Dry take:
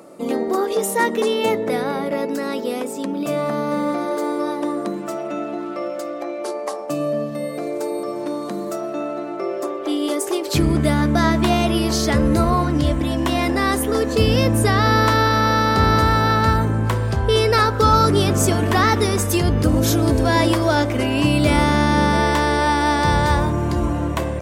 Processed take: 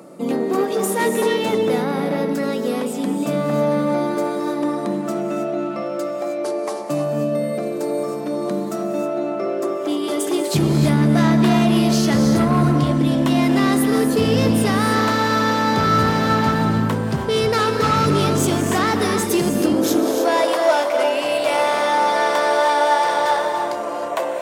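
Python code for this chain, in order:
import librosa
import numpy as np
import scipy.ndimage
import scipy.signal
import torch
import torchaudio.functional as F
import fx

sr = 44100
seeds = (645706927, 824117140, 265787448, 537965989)

y = 10.0 ** (-14.5 / 20.0) * np.tanh(x / 10.0 ** (-14.5 / 20.0))
y = fx.filter_sweep_highpass(y, sr, from_hz=150.0, to_hz=600.0, start_s=19.09, end_s=20.4, q=2.1)
y = fx.rev_gated(y, sr, seeds[0], gate_ms=340, shape='rising', drr_db=4.5)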